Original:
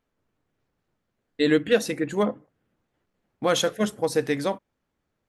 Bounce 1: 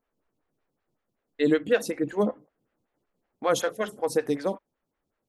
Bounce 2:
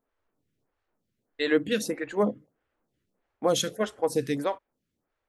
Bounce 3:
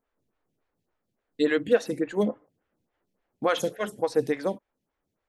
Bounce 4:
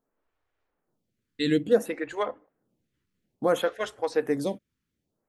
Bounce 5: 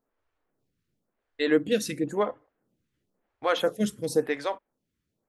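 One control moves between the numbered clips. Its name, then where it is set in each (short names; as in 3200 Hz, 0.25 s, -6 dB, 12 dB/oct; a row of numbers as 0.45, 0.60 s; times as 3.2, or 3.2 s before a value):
photocell phaser, rate: 5.3, 1.6, 3.5, 0.58, 0.96 Hz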